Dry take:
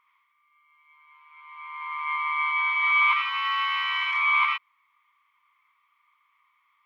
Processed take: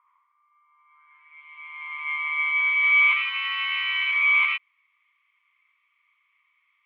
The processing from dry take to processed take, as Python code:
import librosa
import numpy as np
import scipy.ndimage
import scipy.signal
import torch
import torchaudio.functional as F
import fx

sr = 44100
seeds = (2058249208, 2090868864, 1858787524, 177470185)

y = fx.filter_sweep_bandpass(x, sr, from_hz=1000.0, to_hz=2500.0, start_s=0.76, end_s=1.43, q=2.6)
y = y * librosa.db_to_amplitude(5.0)